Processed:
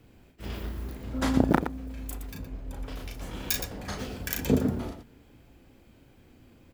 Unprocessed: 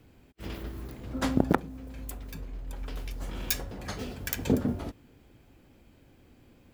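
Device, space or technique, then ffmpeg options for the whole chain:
slapback doubling: -filter_complex "[0:a]asplit=3[a][b][c];[b]adelay=35,volume=-4dB[d];[c]adelay=118,volume=-8.5dB[e];[a][d][e]amix=inputs=3:normalize=0,asettb=1/sr,asplit=3[f][g][h];[f]atrim=end=2.394[i];[g]atrim=start=2.39:end=2.89,asetpts=PTS-STARTPTS,afade=t=in:d=0.004:c=qsin,afade=t=out:st=0.496:d=0.004:c=qsin,tiltshelf=f=970:g=3[j];[h]atrim=start=2.886[k];[i][j]acrossfade=d=0.004:c1=hsin:c2=qsin[l];[l][k]acrossfade=d=0.004:c1=qsin:c2=hsin"

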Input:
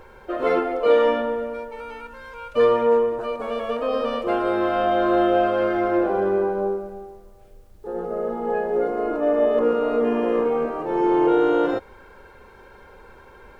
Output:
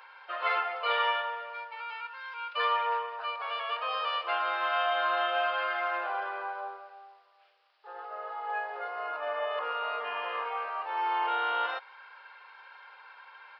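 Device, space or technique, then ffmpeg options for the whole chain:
musical greeting card: -af "aresample=11025,aresample=44100,highpass=f=900:w=0.5412,highpass=f=900:w=1.3066,equalizer=f=2.8k:t=o:w=0.41:g=4.5"

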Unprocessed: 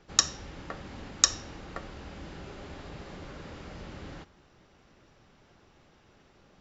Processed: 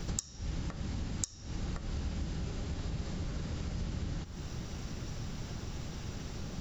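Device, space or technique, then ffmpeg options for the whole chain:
serial compression, leveller first: -af "acompressor=threshold=-44dB:ratio=2.5,acompressor=threshold=-56dB:ratio=10,bass=f=250:g=14,treble=f=4k:g=13,volume=12dB"

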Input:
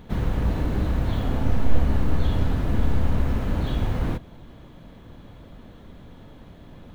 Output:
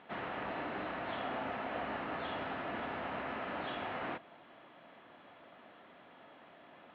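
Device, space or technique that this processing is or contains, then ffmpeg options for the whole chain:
phone earpiece: -af "highpass=460,equalizer=f=470:t=q:w=4:g=-5,equalizer=f=700:t=q:w=4:g=5,equalizer=f=1.3k:t=q:w=4:g=4,equalizer=f=1.9k:t=q:w=4:g=4,equalizer=f=2.7k:t=q:w=4:g=4,lowpass=f=3.2k:w=0.5412,lowpass=f=3.2k:w=1.3066,volume=-4.5dB"

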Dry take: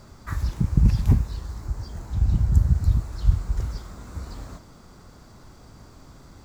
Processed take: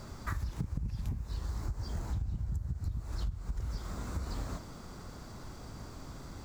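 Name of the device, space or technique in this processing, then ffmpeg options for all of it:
serial compression, leveller first: -af "acompressor=threshold=-24dB:ratio=2.5,acompressor=threshold=-33dB:ratio=10,volume=1.5dB"

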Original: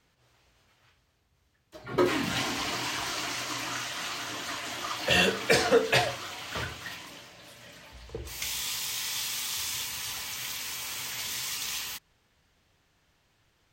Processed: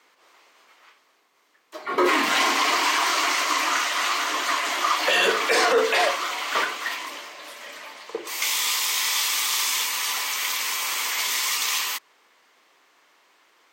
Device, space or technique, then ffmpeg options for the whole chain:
laptop speaker: -af "highpass=f=310:w=0.5412,highpass=f=310:w=1.3066,equalizer=f=1.1k:t=o:w=0.49:g=8,equalizer=f=2.1k:t=o:w=0.32:g=5,alimiter=limit=-19.5dB:level=0:latency=1:release=11,volume=8.5dB"

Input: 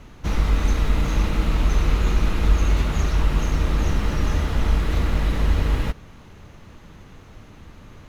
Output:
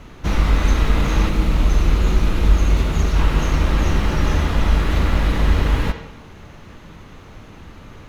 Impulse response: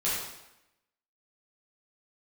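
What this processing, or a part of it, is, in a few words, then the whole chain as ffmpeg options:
filtered reverb send: -filter_complex "[0:a]asplit=2[a][b];[b]highpass=f=230:p=1,lowpass=5.2k[c];[1:a]atrim=start_sample=2205[d];[c][d]afir=irnorm=-1:irlink=0,volume=-12dB[e];[a][e]amix=inputs=2:normalize=0,asettb=1/sr,asplit=3[f][g][h];[f]atrim=end=1.294[i];[g]atrim=start=1.29:end=3.16,asetpts=PTS-STARTPTS,afade=t=in:d=0.004:c=qsin,afade=t=out:st=1.866:d=0.004:c=qsin,equalizer=f=1.6k:t=o:w=2.9:g=-4.5[j];[h]atrim=start=3.156[k];[i][j]acrossfade=d=0.004:c1=hsin:c2=qsin[l];[l][k]acrossfade=d=0.004:c1=qsin:c2=hsin,volume=3dB"

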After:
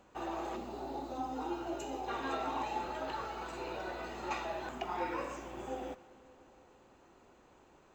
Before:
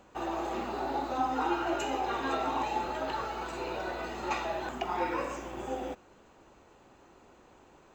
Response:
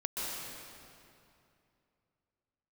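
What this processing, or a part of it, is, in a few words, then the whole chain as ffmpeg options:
saturated reverb return: -filter_complex "[0:a]asettb=1/sr,asplit=3[a][b][c];[a]atrim=end=0.564[d];[b]atrim=start=0.56:end=2.08,asetpts=PTS-STARTPTS,afade=t=in:d=0.004:c=qsin,afade=t=out:st=1.516:d=0.004:c=qsin,equalizer=f=1.7k:t=o:w=1.8:g=-11[e];[c]atrim=start=2.076[f];[d][e]acrossfade=d=0.004:c1=hsin:c2=qsin[g];[g][f]acrossfade=d=0.004:c1=qsin:c2=hsin,asplit=2[h][i];[1:a]atrim=start_sample=2205[j];[i][j]afir=irnorm=-1:irlink=0,asoftclip=type=tanh:threshold=-33dB,volume=-17dB[k];[h][k]amix=inputs=2:normalize=0,volume=-5.5dB"

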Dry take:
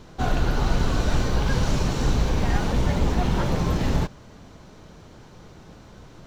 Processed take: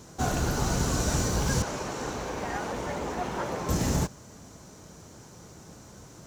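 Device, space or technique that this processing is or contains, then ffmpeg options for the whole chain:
budget condenser microphone: -filter_complex "[0:a]asettb=1/sr,asplit=3[a][b][c];[a]atrim=end=1.624[d];[b]atrim=start=1.62:end=3.69,asetpts=PTS-STARTPTS,afade=t=in:d=0.004:c=qsin,afade=t=out:st=2.066:d=0.004:c=qsin,bass=f=250:g=-15,treble=f=4k:g=-14[e];[c]atrim=start=3.686[f];[d][e]acrossfade=d=0.004:c1=hsin:c2=qsin[g];[g][f]acrossfade=d=0.004:c1=qsin:c2=hsin,highpass=62,highshelf=f=5k:t=q:w=1.5:g=10.5,volume=-2dB"

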